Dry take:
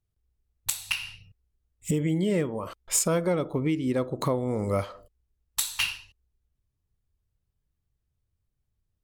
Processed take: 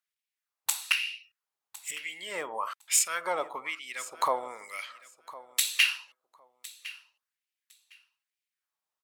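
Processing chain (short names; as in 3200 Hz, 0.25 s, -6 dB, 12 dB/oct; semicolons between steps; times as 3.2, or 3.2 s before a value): LFO high-pass sine 1.1 Hz 820–2400 Hz; feedback echo 1.058 s, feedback 17%, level -18 dB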